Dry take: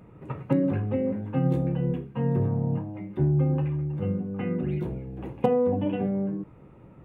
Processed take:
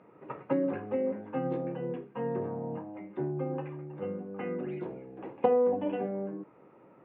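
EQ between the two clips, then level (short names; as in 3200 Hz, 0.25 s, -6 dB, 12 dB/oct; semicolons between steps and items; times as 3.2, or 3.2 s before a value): BPF 360–2400 Hz; air absorption 65 m; 0.0 dB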